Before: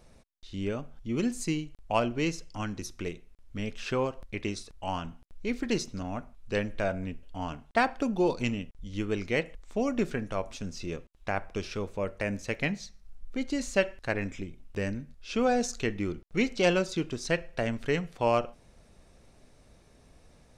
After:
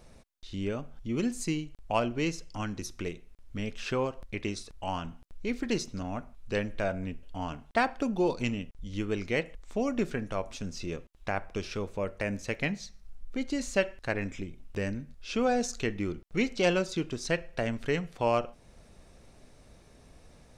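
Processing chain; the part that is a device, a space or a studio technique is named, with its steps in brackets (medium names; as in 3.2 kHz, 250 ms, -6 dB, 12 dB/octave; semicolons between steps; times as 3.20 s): parallel compression (in parallel at -3.5 dB: compression, threshold -41 dBFS, peak gain reduction 20 dB); on the sum: trim -2 dB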